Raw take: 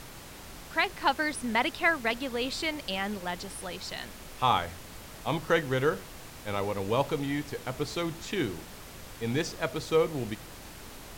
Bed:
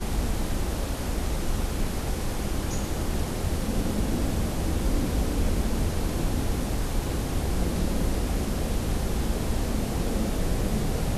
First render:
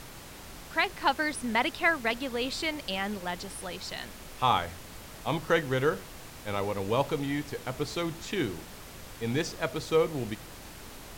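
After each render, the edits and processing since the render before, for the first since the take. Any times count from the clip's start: nothing audible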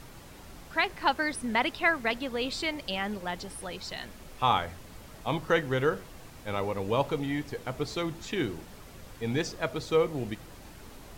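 denoiser 6 dB, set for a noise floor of -46 dBFS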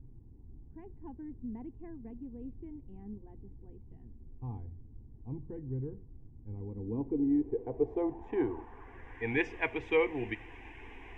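low-pass sweep 170 Hz -> 2400 Hz, 6.56–9.43; fixed phaser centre 880 Hz, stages 8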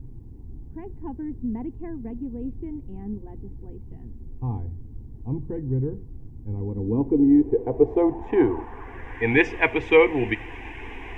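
gain +12 dB

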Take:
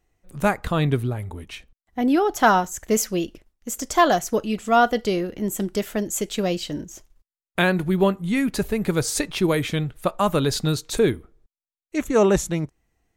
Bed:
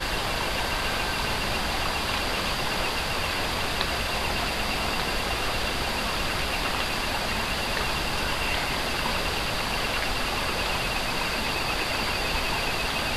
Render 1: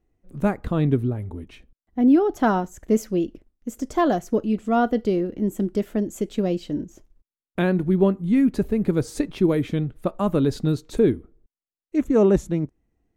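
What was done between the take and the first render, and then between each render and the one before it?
EQ curve 160 Hz 0 dB, 260 Hz +5 dB, 810 Hz -6 dB, 7200 Hz -14 dB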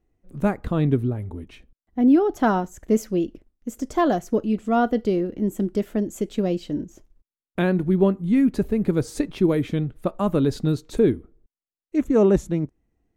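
nothing audible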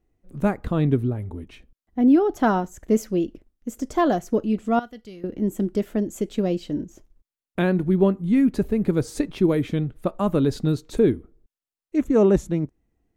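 4.79–5.24 passive tone stack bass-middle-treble 5-5-5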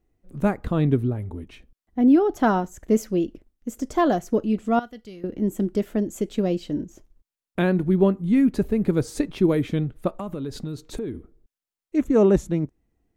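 10.09–11.15 compressor, threshold -27 dBFS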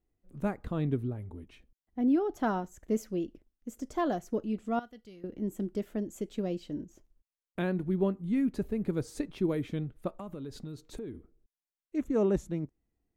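gain -10 dB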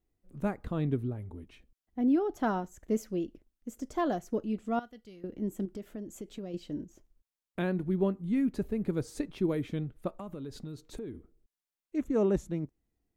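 5.65–6.54 compressor 3:1, threshold -38 dBFS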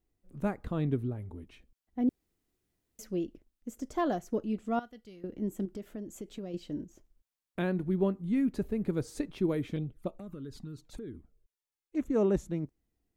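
2.09–2.99 room tone; 9.76–11.97 envelope flanger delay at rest 2.4 ms, full sweep at -32.5 dBFS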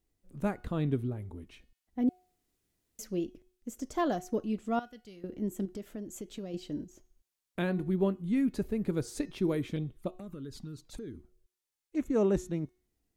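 bell 8200 Hz +4.5 dB 2.8 oct; de-hum 364.4 Hz, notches 18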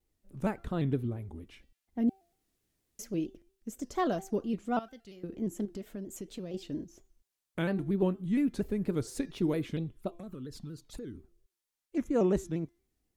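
shaped vibrato square 4.3 Hz, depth 100 cents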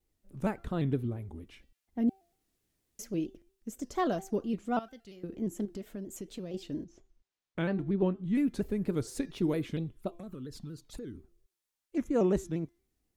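6.84–8.35 air absorption 92 m

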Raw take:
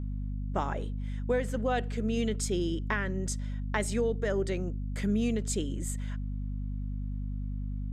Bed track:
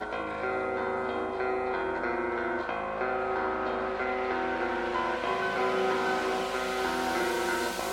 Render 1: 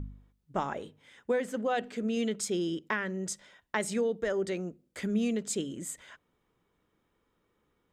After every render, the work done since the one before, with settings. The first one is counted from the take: de-hum 50 Hz, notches 5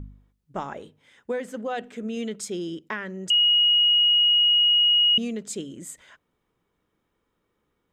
1.83–2.28 notch 4600 Hz, Q 5.9; 3.3–5.18 bleep 2890 Hz -15.5 dBFS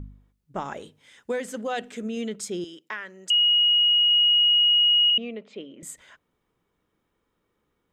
0.65–2.08 bell 7600 Hz +8 dB 2.7 oct; 2.64–4.11 HPF 1100 Hz 6 dB/oct; 5.1–5.83 speaker cabinet 320–3100 Hz, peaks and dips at 350 Hz -5 dB, 590 Hz +4 dB, 1600 Hz -9 dB, 2400 Hz +3 dB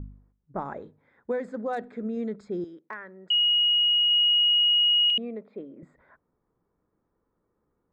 Wiener smoothing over 15 samples; low-pass opened by the level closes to 1700 Hz, open at -24 dBFS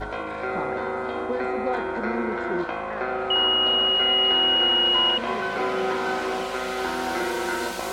add bed track +2.5 dB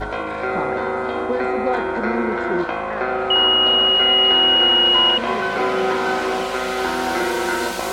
gain +5.5 dB

